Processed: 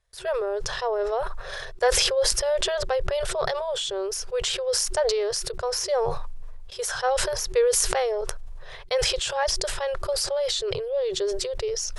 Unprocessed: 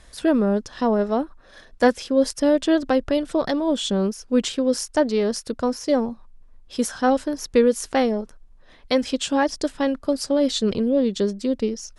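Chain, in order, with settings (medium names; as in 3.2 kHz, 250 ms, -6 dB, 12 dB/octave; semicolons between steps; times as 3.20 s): FFT band-reject 160–370 Hz; gate with hold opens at -35 dBFS; decay stretcher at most 23 dB/s; trim -4 dB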